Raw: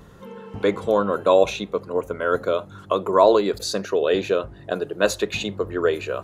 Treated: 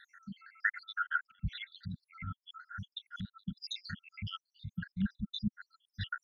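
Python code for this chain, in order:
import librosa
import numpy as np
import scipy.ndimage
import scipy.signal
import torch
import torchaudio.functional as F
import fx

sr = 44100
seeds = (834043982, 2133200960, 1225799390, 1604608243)

y = fx.spec_dropout(x, sr, seeds[0], share_pct=84)
y = scipy.signal.sosfilt(scipy.signal.butter(2, 5500.0, 'lowpass', fs=sr, output='sos'), y)
y = fx.fixed_phaser(y, sr, hz=1700.0, stages=8)
y = fx.env_lowpass_down(y, sr, base_hz=650.0, full_db=-26.0)
y = fx.brickwall_bandstop(y, sr, low_hz=240.0, high_hz=1300.0)
y = y * librosa.db_to_amplitude(7.0)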